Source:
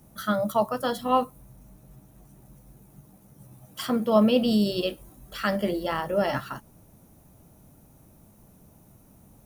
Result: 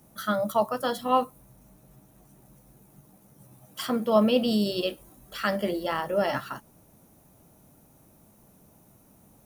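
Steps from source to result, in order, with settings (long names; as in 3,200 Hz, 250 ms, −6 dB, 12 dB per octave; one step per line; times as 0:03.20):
low-shelf EQ 140 Hz −9 dB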